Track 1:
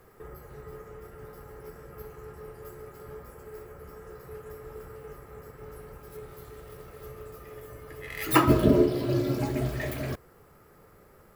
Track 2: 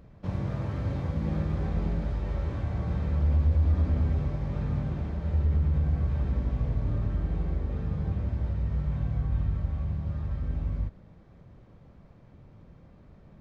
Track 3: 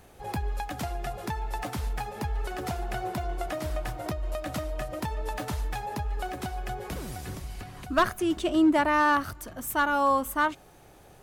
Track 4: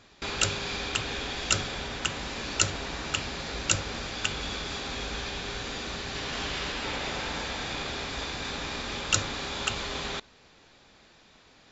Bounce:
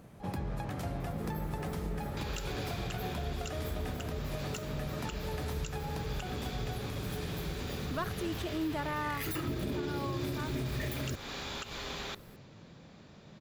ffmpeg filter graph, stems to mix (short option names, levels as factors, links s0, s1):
-filter_complex "[0:a]equalizer=f=910:w=1.1:g=-12.5,adelay=1000,volume=1.41[s0];[1:a]highpass=130,volume=1.19[s1];[2:a]volume=0.376[s2];[3:a]adelay=1950,volume=0.562[s3];[s0][s2]amix=inputs=2:normalize=0,alimiter=limit=0.0794:level=0:latency=1:release=357,volume=1[s4];[s1][s3]amix=inputs=2:normalize=0,acompressor=threshold=0.0178:ratio=6,volume=1[s5];[s4][s5]amix=inputs=2:normalize=0,alimiter=level_in=1.33:limit=0.0631:level=0:latency=1:release=87,volume=0.75"